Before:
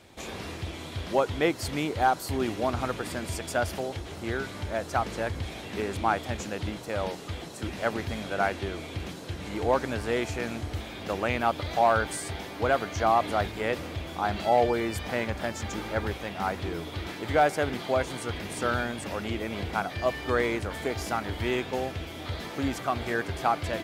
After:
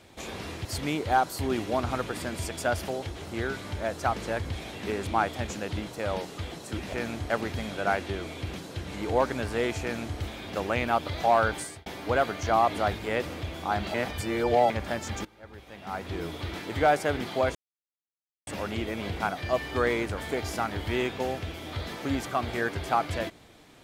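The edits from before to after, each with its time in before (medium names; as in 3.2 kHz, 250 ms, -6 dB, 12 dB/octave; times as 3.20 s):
0.65–1.55 s: delete
10.35–10.72 s: copy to 7.83 s
12.09–12.39 s: fade out
14.47–15.23 s: reverse
15.78–16.76 s: fade in quadratic, from -22 dB
18.08–19.00 s: mute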